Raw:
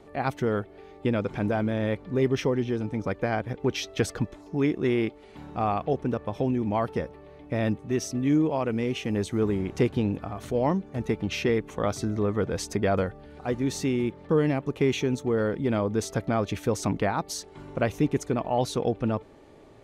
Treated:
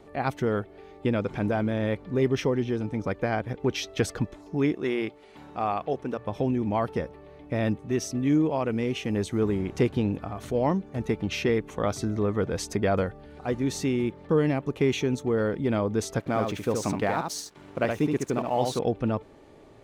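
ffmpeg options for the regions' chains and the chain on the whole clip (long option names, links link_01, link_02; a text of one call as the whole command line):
ffmpeg -i in.wav -filter_complex "[0:a]asettb=1/sr,asplit=3[link_01][link_02][link_03];[link_01]atrim=end=4.744[link_04];[link_02]atrim=start=4.74:end=6.25,asetpts=PTS-STARTPTS,afade=type=in:duration=0.004:curve=qsin,afade=type=out:start_time=1.506:duration=0.004:curve=qsin,lowshelf=frequency=240:gain=-9.5,bandreject=frequency=60:width_type=h:width=6,bandreject=frequency=120:width_type=h:width=6,bandreject=frequency=180:width_type=h:width=6[link_05];[link_03]atrim=start=6.246[link_06];[link_04][link_05]acrossfade=duration=0.004:curve1=hsin:curve2=qsin[link_07];[link_07][link_06]acrossfade=duration=0.004:curve1=qsin:curve2=hsin,asettb=1/sr,asplit=3[link_08][link_09][link_10];[link_08]atrim=end=16.194[link_11];[link_09]atrim=start=16.19:end=18.79,asetpts=PTS-STARTPTS,afade=type=in:duration=0.004:curve=qsin,afade=type=out:start_time=2.596:duration=0.004:curve=qsin,lowshelf=frequency=98:gain=-9.5,aeval=exprs='sgn(val(0))*max(abs(val(0))-0.00335,0)':channel_layout=same,aecho=1:1:72:0.596,atrim=end_sample=114660[link_12];[link_10]atrim=start=18.786[link_13];[link_11][link_12]acrossfade=duration=0.004:curve1=hsin:curve2=qsin[link_14];[link_14][link_13]acrossfade=duration=0.004:curve1=qsin:curve2=hsin" out.wav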